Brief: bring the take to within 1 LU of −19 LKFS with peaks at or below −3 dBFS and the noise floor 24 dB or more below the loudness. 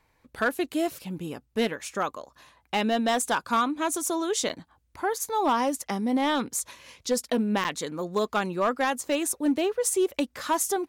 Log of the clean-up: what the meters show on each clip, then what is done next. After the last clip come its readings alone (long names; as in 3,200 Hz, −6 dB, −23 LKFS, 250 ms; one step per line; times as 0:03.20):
share of clipped samples 0.7%; peaks flattened at −17.5 dBFS; number of dropouts 2; longest dropout 8.1 ms; integrated loudness −27.5 LKFS; sample peak −17.5 dBFS; target loudness −19.0 LKFS
→ clipped peaks rebuilt −17.5 dBFS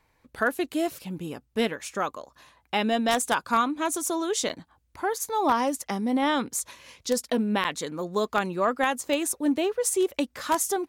share of clipped samples 0.0%; number of dropouts 2; longest dropout 8.1 ms
→ repair the gap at 0:04.49/0:07.64, 8.1 ms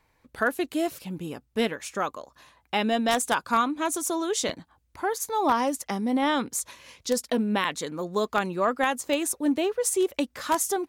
number of dropouts 0; integrated loudness −27.0 LKFS; sample peak −8.5 dBFS; target loudness −19.0 LKFS
→ level +8 dB
brickwall limiter −3 dBFS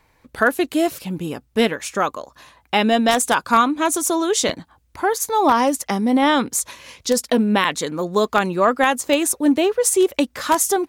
integrated loudness −19.0 LKFS; sample peak −3.0 dBFS; background noise floor −61 dBFS